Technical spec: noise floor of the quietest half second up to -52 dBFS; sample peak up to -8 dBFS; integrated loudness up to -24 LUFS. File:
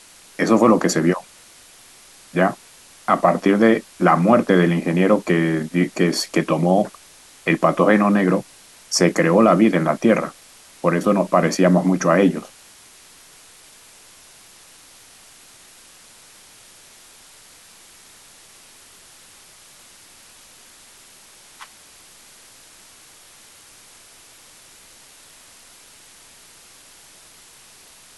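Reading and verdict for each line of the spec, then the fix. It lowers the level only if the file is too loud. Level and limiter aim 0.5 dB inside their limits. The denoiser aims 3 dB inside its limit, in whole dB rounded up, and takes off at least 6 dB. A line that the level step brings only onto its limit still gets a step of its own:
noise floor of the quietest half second -47 dBFS: fail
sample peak -3.0 dBFS: fail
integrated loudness -18.0 LUFS: fail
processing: trim -6.5 dB

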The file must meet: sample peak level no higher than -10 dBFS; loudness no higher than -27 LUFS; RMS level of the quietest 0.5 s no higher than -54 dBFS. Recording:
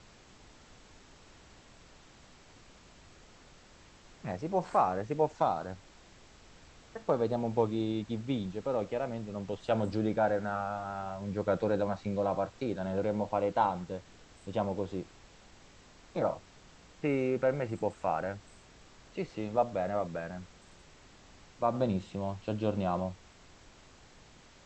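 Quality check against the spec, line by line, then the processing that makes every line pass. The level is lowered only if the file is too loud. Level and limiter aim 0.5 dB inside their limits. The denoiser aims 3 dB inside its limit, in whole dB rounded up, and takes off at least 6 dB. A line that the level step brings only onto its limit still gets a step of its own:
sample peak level -14.5 dBFS: pass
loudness -33.0 LUFS: pass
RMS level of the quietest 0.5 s -57 dBFS: pass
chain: none needed

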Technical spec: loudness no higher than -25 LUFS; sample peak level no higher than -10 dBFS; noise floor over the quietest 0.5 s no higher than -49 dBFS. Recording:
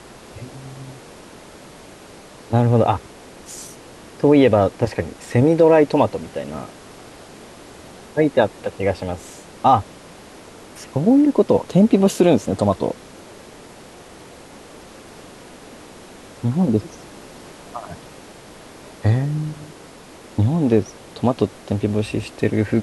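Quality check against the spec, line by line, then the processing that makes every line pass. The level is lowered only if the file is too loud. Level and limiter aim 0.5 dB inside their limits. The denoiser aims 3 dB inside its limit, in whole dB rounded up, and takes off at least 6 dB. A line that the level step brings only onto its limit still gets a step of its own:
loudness -18.5 LUFS: fail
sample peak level -3.5 dBFS: fail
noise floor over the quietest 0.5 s -42 dBFS: fail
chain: noise reduction 6 dB, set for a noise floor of -42 dBFS; trim -7 dB

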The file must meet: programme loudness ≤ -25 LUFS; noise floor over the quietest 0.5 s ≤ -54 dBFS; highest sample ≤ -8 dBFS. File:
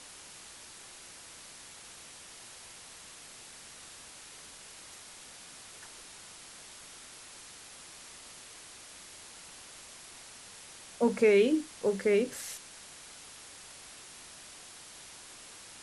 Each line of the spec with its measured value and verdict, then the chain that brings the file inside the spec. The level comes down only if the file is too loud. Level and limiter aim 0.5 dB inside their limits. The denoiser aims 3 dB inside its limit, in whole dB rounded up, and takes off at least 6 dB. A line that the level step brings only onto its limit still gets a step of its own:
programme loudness -28.0 LUFS: pass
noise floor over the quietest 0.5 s -50 dBFS: fail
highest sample -13.0 dBFS: pass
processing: noise reduction 7 dB, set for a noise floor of -50 dBFS

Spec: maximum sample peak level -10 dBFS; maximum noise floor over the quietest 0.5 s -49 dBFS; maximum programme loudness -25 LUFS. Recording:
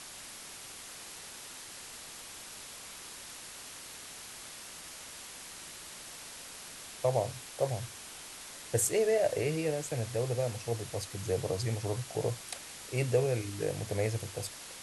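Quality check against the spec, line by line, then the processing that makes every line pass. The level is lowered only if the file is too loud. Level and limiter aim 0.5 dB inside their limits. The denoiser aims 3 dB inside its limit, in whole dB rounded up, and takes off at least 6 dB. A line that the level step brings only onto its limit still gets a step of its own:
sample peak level -15.5 dBFS: pass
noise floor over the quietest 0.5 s -47 dBFS: fail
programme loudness -35.5 LUFS: pass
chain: noise reduction 6 dB, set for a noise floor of -47 dBFS

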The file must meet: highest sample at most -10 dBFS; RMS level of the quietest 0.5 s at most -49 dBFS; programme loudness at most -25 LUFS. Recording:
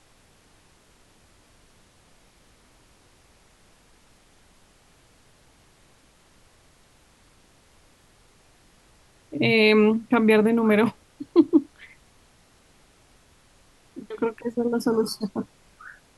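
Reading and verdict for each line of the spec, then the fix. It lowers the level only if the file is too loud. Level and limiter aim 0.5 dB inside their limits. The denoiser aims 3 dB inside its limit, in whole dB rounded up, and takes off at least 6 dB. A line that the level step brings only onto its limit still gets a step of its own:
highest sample -5.5 dBFS: fail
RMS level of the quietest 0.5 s -58 dBFS: pass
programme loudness -21.5 LUFS: fail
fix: trim -4 dB; peak limiter -10.5 dBFS

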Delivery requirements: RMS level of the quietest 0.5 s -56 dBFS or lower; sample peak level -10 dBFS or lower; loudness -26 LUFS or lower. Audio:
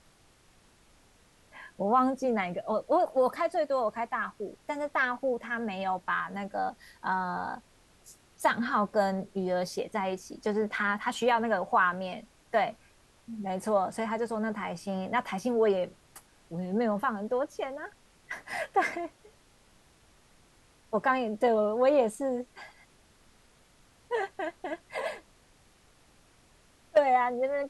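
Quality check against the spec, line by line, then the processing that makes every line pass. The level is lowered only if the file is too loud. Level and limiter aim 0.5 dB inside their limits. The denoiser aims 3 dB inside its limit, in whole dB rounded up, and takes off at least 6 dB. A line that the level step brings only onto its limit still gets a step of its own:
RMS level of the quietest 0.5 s -62 dBFS: pass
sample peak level -12.5 dBFS: pass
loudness -30.0 LUFS: pass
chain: none needed

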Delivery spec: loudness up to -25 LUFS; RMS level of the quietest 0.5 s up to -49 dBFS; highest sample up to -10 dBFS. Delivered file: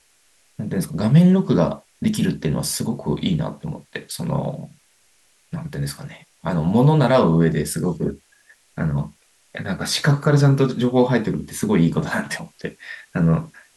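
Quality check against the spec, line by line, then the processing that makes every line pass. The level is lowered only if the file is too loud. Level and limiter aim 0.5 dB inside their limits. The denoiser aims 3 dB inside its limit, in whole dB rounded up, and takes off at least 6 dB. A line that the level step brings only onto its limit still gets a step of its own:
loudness -20.0 LUFS: fail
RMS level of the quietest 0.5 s -59 dBFS: pass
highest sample -5.5 dBFS: fail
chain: trim -5.5 dB

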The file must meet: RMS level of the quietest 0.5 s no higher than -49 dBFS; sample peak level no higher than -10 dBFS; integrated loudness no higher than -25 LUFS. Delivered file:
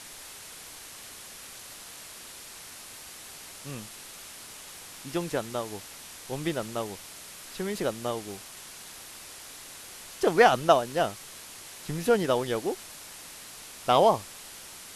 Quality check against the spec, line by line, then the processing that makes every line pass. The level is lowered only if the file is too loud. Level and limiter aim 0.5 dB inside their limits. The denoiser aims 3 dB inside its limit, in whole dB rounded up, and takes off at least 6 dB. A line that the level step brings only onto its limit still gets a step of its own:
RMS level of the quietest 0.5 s -45 dBFS: fail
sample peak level -4.5 dBFS: fail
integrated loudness -27.5 LUFS: pass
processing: noise reduction 7 dB, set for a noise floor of -45 dBFS; peak limiter -10.5 dBFS

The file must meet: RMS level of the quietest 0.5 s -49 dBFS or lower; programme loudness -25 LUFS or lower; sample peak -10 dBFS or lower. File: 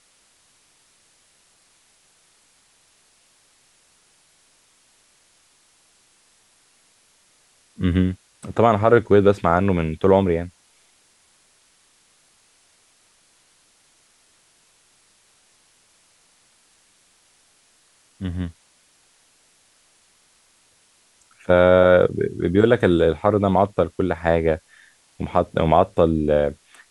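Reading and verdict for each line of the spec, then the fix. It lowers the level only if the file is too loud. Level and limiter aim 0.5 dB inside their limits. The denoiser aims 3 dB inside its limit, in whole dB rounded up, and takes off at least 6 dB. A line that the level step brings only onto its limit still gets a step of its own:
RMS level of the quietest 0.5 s -59 dBFS: pass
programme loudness -19.0 LUFS: fail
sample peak -2.0 dBFS: fail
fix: trim -6.5 dB; peak limiter -10.5 dBFS

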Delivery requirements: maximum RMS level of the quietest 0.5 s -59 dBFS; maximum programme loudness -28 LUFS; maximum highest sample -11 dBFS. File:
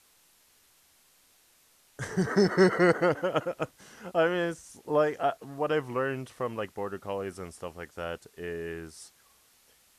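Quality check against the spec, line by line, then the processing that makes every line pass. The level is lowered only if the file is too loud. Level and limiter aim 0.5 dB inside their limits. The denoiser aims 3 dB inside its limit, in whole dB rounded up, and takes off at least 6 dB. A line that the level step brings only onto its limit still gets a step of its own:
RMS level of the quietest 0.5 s -63 dBFS: pass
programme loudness -29.0 LUFS: pass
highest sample -9.5 dBFS: fail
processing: peak limiter -11.5 dBFS

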